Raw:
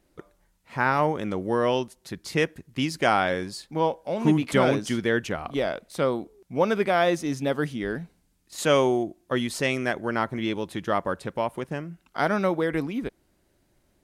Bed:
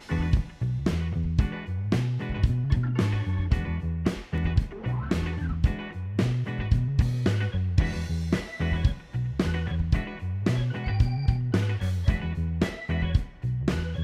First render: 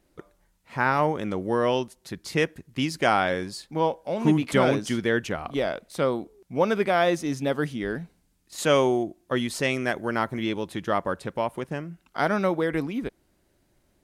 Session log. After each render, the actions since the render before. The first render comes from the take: 9.88–10.44 high shelf 9500 Hz +8 dB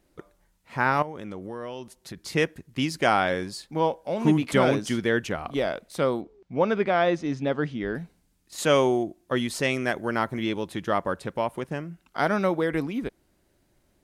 1.02–2.25 compressor 5:1, threshold -33 dBFS; 6.21–7.95 air absorption 140 m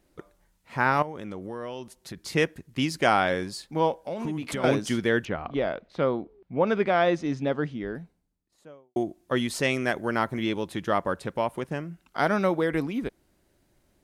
3.91–4.64 compressor 5:1, threshold -28 dBFS; 5.25–6.67 air absorption 240 m; 7.22–8.96 studio fade out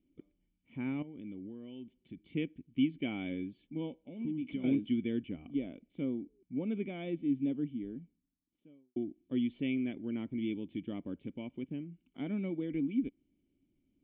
vocal tract filter i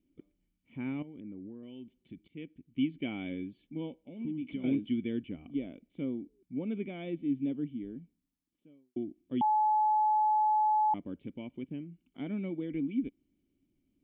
1.2–1.63 LPF 1800 Hz 24 dB/oct; 2.28–3.05 fade in equal-power, from -18 dB; 9.41–10.94 bleep 856 Hz -23.5 dBFS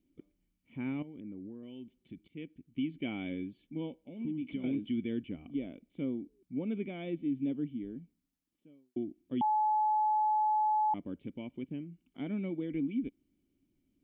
limiter -25.5 dBFS, peak gain reduction 6 dB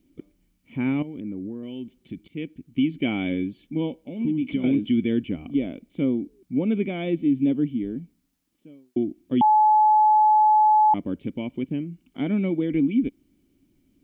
gain +12 dB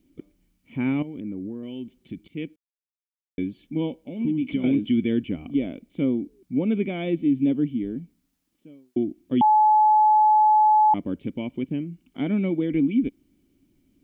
2.56–3.38 mute

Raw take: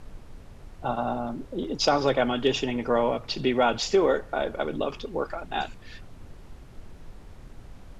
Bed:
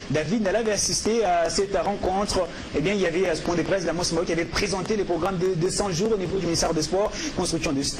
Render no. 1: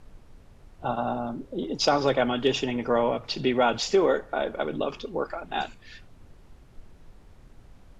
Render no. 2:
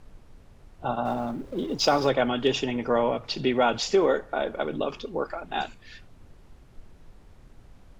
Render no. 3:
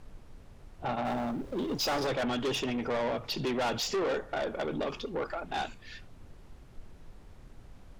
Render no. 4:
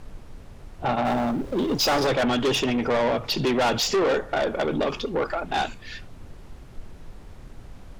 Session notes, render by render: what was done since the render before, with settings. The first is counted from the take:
noise print and reduce 6 dB
1.05–2.07 G.711 law mismatch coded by mu
soft clip -27 dBFS, distortion -6 dB
gain +8.5 dB

